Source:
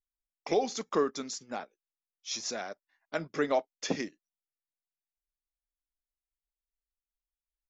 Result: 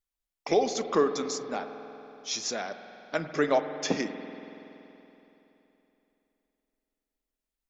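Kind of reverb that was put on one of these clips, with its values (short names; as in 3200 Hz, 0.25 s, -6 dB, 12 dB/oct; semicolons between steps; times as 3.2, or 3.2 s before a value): spring tank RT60 3.3 s, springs 47 ms, chirp 80 ms, DRR 8.5 dB; gain +3.5 dB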